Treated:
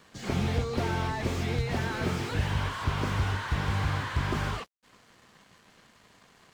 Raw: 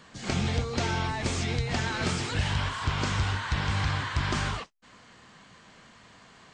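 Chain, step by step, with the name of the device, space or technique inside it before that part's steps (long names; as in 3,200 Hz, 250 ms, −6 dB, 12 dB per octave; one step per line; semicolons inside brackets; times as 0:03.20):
early transistor amplifier (dead-zone distortion −57 dBFS; slew-rate limiting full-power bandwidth 38 Hz)
parametric band 420 Hz +2.5 dB 0.71 octaves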